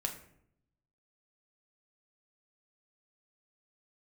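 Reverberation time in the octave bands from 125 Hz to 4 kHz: 1.2, 1.0, 0.75, 0.65, 0.60, 0.40 seconds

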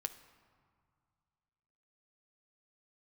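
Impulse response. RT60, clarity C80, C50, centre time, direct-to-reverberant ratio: 2.1 s, 14.5 dB, 12.5 dB, 10 ms, 9.0 dB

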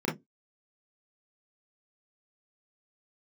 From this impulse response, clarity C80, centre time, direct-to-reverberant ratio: 24.5 dB, 33 ms, −5.5 dB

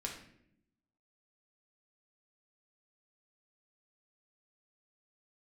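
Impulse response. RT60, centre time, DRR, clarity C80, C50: 0.70 s, 27 ms, −1.0 dB, 9.5 dB, 6.0 dB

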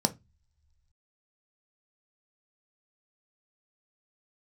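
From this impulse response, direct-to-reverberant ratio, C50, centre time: 6.5 dB, 20.0 dB, 5 ms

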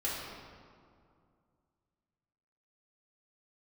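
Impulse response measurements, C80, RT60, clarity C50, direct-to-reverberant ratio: 1.5 dB, 2.3 s, −1.0 dB, −7.5 dB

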